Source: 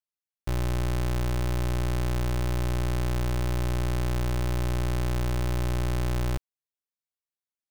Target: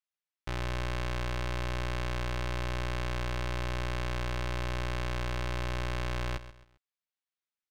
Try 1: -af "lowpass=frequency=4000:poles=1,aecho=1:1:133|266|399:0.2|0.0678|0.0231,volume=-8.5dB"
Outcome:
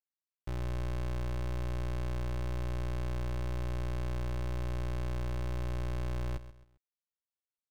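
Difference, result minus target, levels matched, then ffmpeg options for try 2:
2,000 Hz band −8.5 dB
-af "lowpass=frequency=4000:poles=1,equalizer=frequency=2600:width=0.3:gain=11.5,aecho=1:1:133|266|399:0.2|0.0678|0.0231,volume=-8.5dB"

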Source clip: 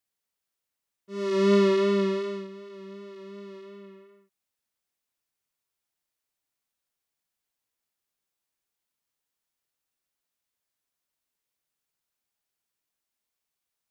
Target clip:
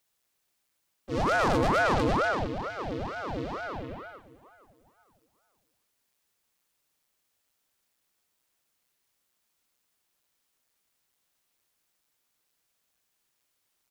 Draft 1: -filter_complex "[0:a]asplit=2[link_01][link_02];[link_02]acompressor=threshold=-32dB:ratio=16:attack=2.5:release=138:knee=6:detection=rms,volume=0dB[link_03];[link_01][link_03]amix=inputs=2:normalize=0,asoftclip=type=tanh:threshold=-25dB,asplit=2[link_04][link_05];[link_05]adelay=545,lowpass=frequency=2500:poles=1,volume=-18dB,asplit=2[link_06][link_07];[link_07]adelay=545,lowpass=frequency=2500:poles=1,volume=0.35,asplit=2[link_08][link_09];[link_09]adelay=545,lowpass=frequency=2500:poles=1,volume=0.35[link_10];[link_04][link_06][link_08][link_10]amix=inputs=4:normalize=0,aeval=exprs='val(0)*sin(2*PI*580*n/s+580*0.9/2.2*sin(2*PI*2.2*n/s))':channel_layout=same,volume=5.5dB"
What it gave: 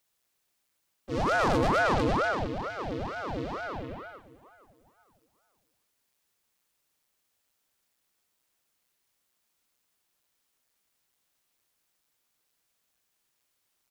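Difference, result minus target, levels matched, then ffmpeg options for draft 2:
downward compressor: peak gain reduction +7 dB
-filter_complex "[0:a]asplit=2[link_01][link_02];[link_02]acompressor=threshold=-24.5dB:ratio=16:attack=2.5:release=138:knee=6:detection=rms,volume=0dB[link_03];[link_01][link_03]amix=inputs=2:normalize=0,asoftclip=type=tanh:threshold=-25dB,asplit=2[link_04][link_05];[link_05]adelay=545,lowpass=frequency=2500:poles=1,volume=-18dB,asplit=2[link_06][link_07];[link_07]adelay=545,lowpass=frequency=2500:poles=1,volume=0.35,asplit=2[link_08][link_09];[link_09]adelay=545,lowpass=frequency=2500:poles=1,volume=0.35[link_10];[link_04][link_06][link_08][link_10]amix=inputs=4:normalize=0,aeval=exprs='val(0)*sin(2*PI*580*n/s+580*0.9/2.2*sin(2*PI*2.2*n/s))':channel_layout=same,volume=5.5dB"

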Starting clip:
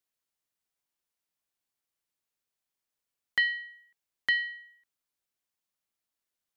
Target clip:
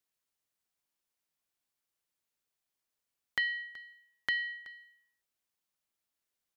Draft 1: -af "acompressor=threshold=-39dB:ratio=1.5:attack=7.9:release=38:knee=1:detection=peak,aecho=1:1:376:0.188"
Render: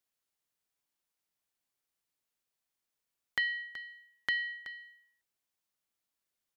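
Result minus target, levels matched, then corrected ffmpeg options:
echo-to-direct +6 dB
-af "acompressor=threshold=-39dB:ratio=1.5:attack=7.9:release=38:knee=1:detection=peak,aecho=1:1:376:0.0944"

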